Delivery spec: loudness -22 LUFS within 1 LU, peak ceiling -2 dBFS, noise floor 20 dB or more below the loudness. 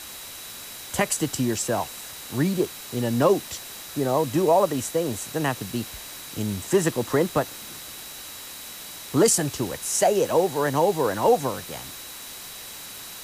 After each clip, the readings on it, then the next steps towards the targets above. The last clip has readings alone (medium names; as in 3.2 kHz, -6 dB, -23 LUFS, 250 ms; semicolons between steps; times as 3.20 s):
steady tone 3.9 kHz; tone level -46 dBFS; noise floor -39 dBFS; noise floor target -44 dBFS; loudness -24.0 LUFS; peak level -8.5 dBFS; loudness target -22.0 LUFS
-> band-stop 3.9 kHz, Q 30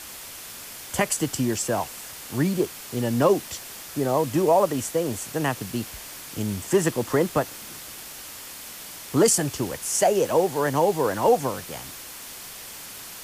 steady tone not found; noise floor -40 dBFS; noise floor target -44 dBFS
-> noise reduction 6 dB, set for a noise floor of -40 dBFS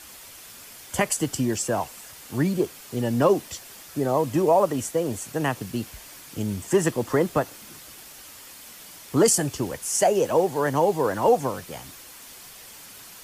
noise floor -45 dBFS; loudness -24.0 LUFS; peak level -8.5 dBFS; loudness target -22.0 LUFS
-> trim +2 dB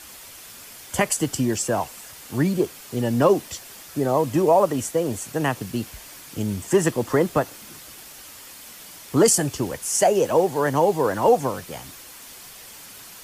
loudness -22.0 LUFS; peak level -6.5 dBFS; noise floor -43 dBFS